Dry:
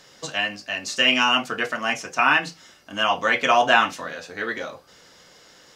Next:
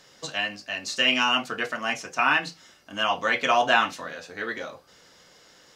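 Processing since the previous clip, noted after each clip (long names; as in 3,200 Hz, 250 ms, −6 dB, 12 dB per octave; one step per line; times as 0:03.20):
dynamic equaliser 4,100 Hz, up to +5 dB, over −44 dBFS, Q 4.7
level −3.5 dB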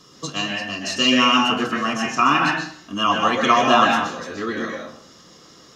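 convolution reverb RT60 0.60 s, pre-delay 115 ms, DRR 2 dB
level +4.5 dB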